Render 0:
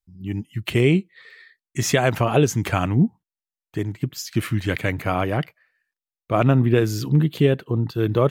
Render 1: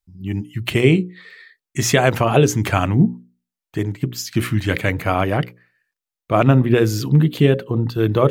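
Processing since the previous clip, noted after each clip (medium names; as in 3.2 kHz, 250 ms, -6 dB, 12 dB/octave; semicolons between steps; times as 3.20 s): hum notches 60/120/180/240/300/360/420/480/540 Hz; trim +4 dB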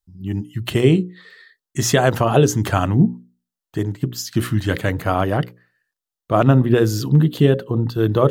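peaking EQ 2.3 kHz -11.5 dB 0.33 oct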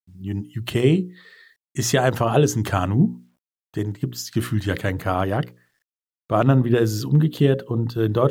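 bit crusher 11-bit; trim -3 dB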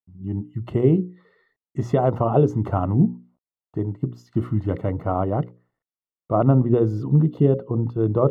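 Savitzky-Golay filter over 65 samples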